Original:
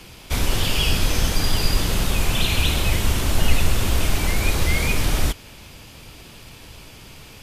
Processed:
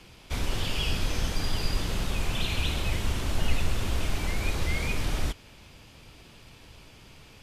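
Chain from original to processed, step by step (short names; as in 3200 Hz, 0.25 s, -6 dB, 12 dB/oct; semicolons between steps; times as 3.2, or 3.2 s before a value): high shelf 10000 Hz -11.5 dB; gain -8 dB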